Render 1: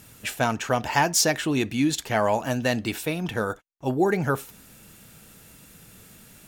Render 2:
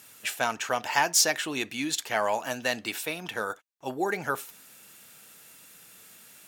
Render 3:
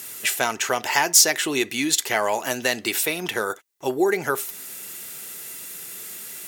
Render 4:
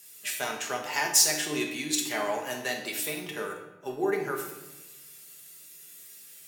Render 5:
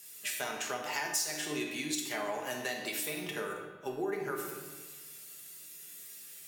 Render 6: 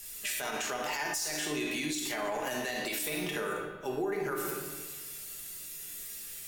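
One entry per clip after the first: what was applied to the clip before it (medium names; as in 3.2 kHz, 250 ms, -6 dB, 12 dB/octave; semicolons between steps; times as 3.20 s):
high-pass 890 Hz 6 dB/octave
small resonant body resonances 380/2000 Hz, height 10 dB, ringing for 45 ms; compression 1.5:1, threshold -38 dBFS, peak gain reduction 7.5 dB; treble shelf 5.1 kHz +8.5 dB; trim +9 dB
feedback comb 150 Hz, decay 0.46 s, harmonics all, mix 80%; simulated room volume 1200 m³, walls mixed, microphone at 1.3 m; three bands expanded up and down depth 40%
compression 3:1, threshold -34 dBFS, peak gain reduction 13.5 dB; spring tank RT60 1.7 s, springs 46/56 ms, chirp 55 ms, DRR 13.5 dB
hum notches 60/120 Hz; peak limiter -30.5 dBFS, peak gain reduction 10.5 dB; added noise brown -69 dBFS; trim +6 dB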